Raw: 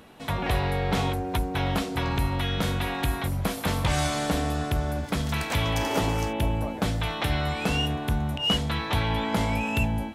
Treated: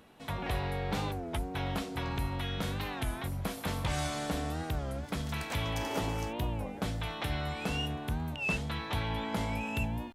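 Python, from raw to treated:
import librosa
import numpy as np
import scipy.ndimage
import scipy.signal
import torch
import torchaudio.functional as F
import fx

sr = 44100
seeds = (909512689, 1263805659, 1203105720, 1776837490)

y = fx.record_warp(x, sr, rpm=33.33, depth_cents=160.0)
y = F.gain(torch.from_numpy(y), -8.0).numpy()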